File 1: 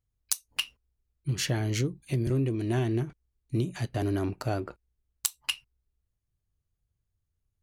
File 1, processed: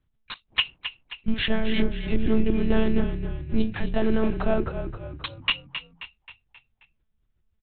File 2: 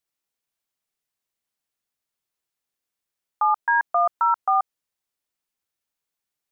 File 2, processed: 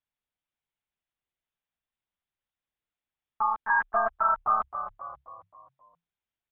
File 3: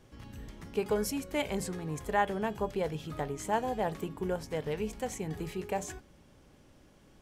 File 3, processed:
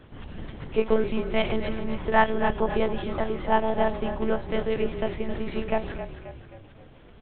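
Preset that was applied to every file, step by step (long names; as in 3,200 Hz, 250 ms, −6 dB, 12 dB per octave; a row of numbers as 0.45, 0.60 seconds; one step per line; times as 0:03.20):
one-pitch LPC vocoder at 8 kHz 220 Hz
echo with shifted repeats 266 ms, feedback 49%, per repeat −34 Hz, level −10 dB
loudness normalisation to −27 LKFS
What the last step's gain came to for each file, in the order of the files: +8.0, −4.0, +8.5 decibels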